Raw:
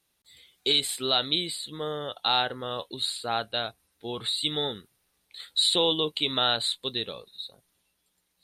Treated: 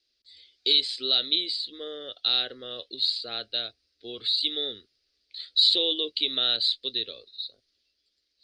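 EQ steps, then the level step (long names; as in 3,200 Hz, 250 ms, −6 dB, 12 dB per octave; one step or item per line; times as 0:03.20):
transistor ladder low-pass 5,100 Hz, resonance 75%
phaser with its sweep stopped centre 380 Hz, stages 4
+8.0 dB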